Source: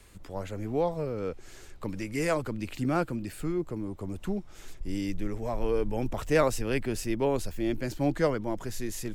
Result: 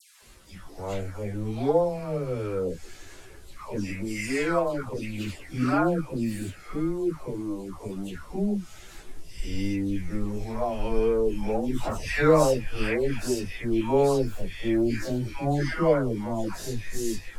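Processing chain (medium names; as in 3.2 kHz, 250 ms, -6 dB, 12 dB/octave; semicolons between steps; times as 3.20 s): treble shelf 9.6 kHz -7 dB; band noise 1.6–12 kHz -64 dBFS; phase dispersion lows, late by 131 ms, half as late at 1.3 kHz; plain phase-vocoder stretch 1.9×; trim +6 dB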